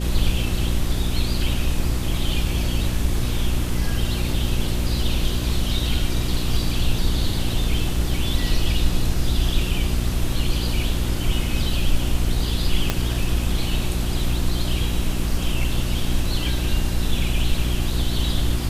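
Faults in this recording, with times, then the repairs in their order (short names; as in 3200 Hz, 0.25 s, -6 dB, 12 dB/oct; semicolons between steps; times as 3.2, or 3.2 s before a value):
hum 60 Hz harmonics 6 -25 dBFS
12.9 pop -5 dBFS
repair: de-click; de-hum 60 Hz, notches 6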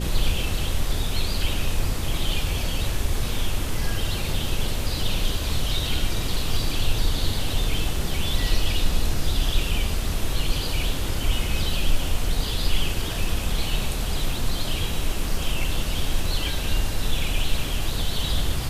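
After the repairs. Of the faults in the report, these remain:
12.9 pop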